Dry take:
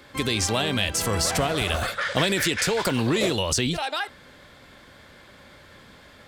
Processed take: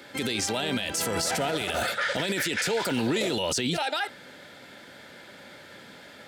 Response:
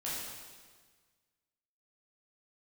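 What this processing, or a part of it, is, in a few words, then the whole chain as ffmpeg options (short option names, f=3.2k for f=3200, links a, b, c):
PA system with an anti-feedback notch: -af "highpass=170,asuperstop=centerf=1100:order=8:qfactor=6.8,alimiter=limit=-21.5dB:level=0:latency=1:release=27,volume=3dB"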